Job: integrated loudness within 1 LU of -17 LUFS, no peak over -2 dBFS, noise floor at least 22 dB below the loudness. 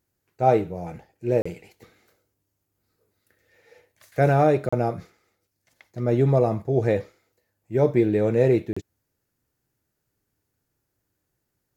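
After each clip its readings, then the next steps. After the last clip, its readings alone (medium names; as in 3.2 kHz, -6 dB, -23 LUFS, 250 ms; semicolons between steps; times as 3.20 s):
dropouts 3; longest dropout 35 ms; loudness -22.5 LUFS; peak level -5.5 dBFS; loudness target -17.0 LUFS
-> interpolate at 1.42/4.69/8.73 s, 35 ms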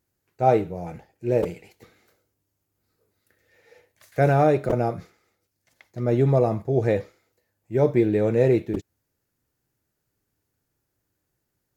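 dropouts 0; loudness -22.5 LUFS; peak level -5.5 dBFS; loudness target -17.0 LUFS
-> trim +5.5 dB; peak limiter -2 dBFS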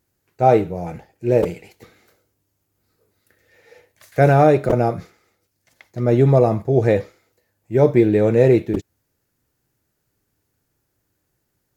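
loudness -17.5 LUFS; peak level -2.0 dBFS; noise floor -73 dBFS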